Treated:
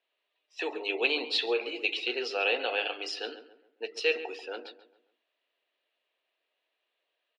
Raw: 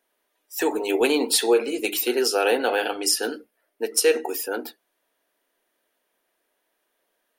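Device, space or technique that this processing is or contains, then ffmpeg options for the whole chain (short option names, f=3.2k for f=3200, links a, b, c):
phone earpiece: -filter_complex "[0:a]highpass=500,equalizer=f=890:t=q:w=4:g=-5,equalizer=f=1.5k:t=q:w=4:g=-6,equalizer=f=2.7k:t=q:w=4:g=9,equalizer=f=4k:t=q:w=4:g=6,lowpass=f=4.2k:w=0.5412,lowpass=f=4.2k:w=1.3066,asplit=2[a][b];[b]adelay=137,lowpass=f=2k:p=1,volume=-12dB,asplit=2[c][d];[d]adelay=137,lowpass=f=2k:p=1,volume=0.39,asplit=2[e][f];[f]adelay=137,lowpass=f=2k:p=1,volume=0.39,asplit=2[g][h];[h]adelay=137,lowpass=f=2k:p=1,volume=0.39[i];[a][c][e][g][i]amix=inputs=5:normalize=0,volume=-6.5dB"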